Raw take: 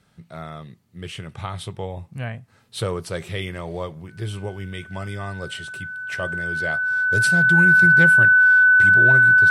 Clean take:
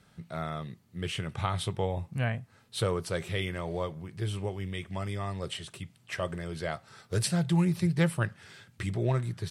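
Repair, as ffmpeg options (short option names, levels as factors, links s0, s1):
-af "bandreject=f=1500:w=30,asetnsamples=n=441:p=0,asendcmd='2.48 volume volume -3.5dB',volume=1"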